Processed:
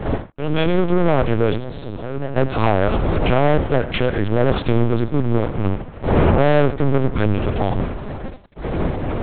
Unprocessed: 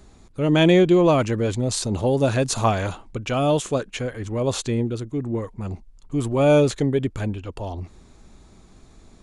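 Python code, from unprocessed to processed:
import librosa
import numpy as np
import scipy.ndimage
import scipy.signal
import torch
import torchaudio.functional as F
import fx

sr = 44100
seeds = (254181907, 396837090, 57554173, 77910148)

p1 = fx.fade_in_head(x, sr, length_s=1.93)
p2 = fx.dmg_wind(p1, sr, seeds[0], corner_hz=390.0, level_db=-29.0)
p3 = fx.env_lowpass_down(p2, sr, base_hz=800.0, full_db=-16.0)
p4 = fx.leveller(p3, sr, passes=5)
p5 = 10.0 ** (-16.5 / 20.0) * np.tanh(p4 / 10.0 ** (-16.5 / 20.0))
p6 = p4 + F.gain(torch.from_numpy(p5), -10.5).numpy()
p7 = fx.comb_fb(p6, sr, f0_hz=140.0, decay_s=0.97, harmonics='all', damping=0.0, mix_pct=80, at=(1.56, 2.36), fade=0.02)
p8 = p7 + fx.echo_single(p7, sr, ms=86, db=-13.5, dry=0)
p9 = fx.lpc_vocoder(p8, sr, seeds[1], excitation='pitch_kept', order=8)
y = F.gain(torch.from_numpy(p9), -8.0).numpy()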